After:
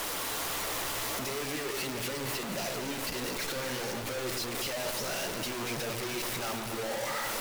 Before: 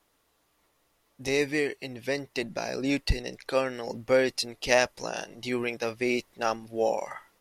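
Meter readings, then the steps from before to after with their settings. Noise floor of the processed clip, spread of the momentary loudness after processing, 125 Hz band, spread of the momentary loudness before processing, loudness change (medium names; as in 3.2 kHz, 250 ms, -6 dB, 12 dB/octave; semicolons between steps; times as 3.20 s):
-36 dBFS, 2 LU, -2.0 dB, 11 LU, -4.0 dB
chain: one-bit comparator; bass shelf 240 Hz -8.5 dB; flange 1.5 Hz, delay 1.3 ms, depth 8.3 ms, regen +62%; peaking EQ 130 Hz +4 dB 0.28 oct; echo whose repeats swap between lows and highs 117 ms, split 1.4 kHz, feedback 82%, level -7 dB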